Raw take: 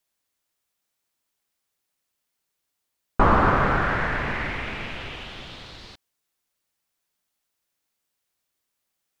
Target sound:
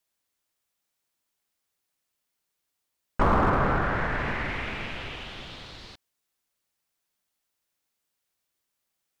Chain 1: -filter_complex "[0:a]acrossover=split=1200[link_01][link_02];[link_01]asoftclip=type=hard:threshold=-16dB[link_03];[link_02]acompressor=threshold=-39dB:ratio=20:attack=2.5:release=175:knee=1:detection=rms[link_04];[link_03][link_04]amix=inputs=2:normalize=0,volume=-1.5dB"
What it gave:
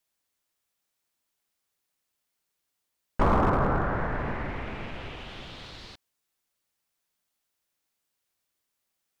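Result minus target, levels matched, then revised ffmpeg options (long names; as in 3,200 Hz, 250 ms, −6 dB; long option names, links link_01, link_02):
downward compressor: peak gain reduction +11 dB
-filter_complex "[0:a]acrossover=split=1200[link_01][link_02];[link_01]asoftclip=type=hard:threshold=-16dB[link_03];[link_02]acompressor=threshold=-27.5dB:ratio=20:attack=2.5:release=175:knee=1:detection=rms[link_04];[link_03][link_04]amix=inputs=2:normalize=0,volume=-1.5dB"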